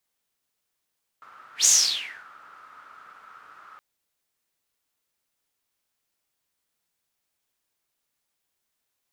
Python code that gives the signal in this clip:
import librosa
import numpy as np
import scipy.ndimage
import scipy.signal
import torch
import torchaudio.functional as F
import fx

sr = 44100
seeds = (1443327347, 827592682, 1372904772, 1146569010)

y = fx.whoosh(sr, seeds[0], length_s=2.57, peak_s=0.44, rise_s=0.12, fall_s=0.66, ends_hz=1300.0, peak_hz=6700.0, q=9.2, swell_db=33.0)